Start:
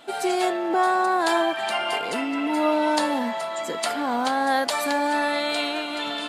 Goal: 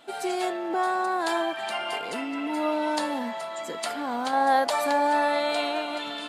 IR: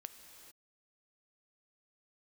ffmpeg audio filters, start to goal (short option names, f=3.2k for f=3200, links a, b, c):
-filter_complex "[0:a]asettb=1/sr,asplit=3[a][b][c];[a]atrim=end=4.334[d];[b]atrim=start=4.33:end=5.98,asetpts=PTS-STARTPTS,afade=t=in:d=0.004:c=qsin,afade=t=out:st=1.646:d=0.004:c=qsin,equalizer=f=740:t=o:w=1.5:g=7.5[e];[c]atrim=start=5.976[f];[d][e]acrossfade=d=0.004:c1=hsin:c2=qsin[g];[g][f]acrossfade=d=0.004:c1=qsin:c2=hsin,volume=-5dB"